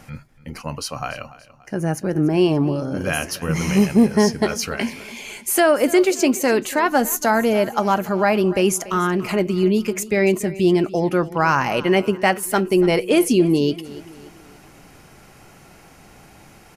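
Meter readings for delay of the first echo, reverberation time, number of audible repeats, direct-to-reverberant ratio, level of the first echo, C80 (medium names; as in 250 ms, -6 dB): 288 ms, no reverb, 3, no reverb, -18.0 dB, no reverb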